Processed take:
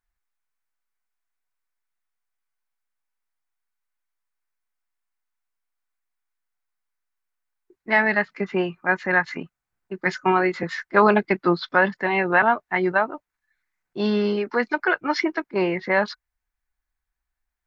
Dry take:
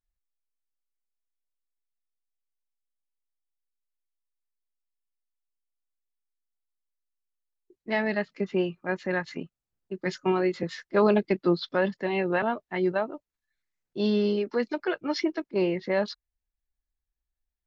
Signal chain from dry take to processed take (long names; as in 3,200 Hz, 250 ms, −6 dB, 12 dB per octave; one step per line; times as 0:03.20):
flat-topped bell 1,400 Hz +9 dB
hollow resonant body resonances 720/1,500 Hz, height 6 dB
level +2.5 dB